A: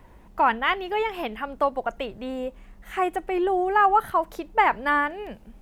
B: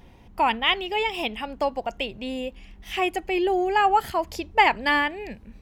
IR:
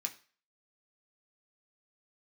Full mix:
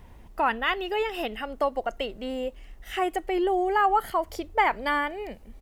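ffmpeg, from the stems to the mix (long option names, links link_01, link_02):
-filter_complex "[0:a]highshelf=frequency=4000:gain=6,volume=-4dB,asplit=2[link_01][link_02];[1:a]volume=-1,adelay=0.3,volume=-6.5dB[link_03];[link_02]apad=whole_len=247620[link_04];[link_03][link_04]sidechaincompress=threshold=-29dB:ratio=8:attack=16:release=118[link_05];[link_01][link_05]amix=inputs=2:normalize=0,lowshelf=frequency=85:gain=7"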